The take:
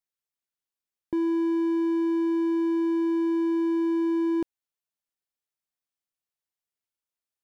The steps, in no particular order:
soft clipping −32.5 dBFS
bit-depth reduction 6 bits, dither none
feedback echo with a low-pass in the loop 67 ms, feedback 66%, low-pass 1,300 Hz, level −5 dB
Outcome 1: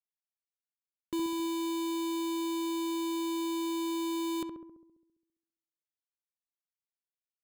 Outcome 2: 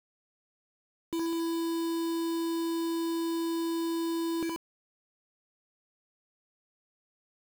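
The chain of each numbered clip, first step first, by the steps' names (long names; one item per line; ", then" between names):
soft clipping, then bit-depth reduction, then feedback echo with a low-pass in the loop
feedback echo with a low-pass in the loop, then soft clipping, then bit-depth reduction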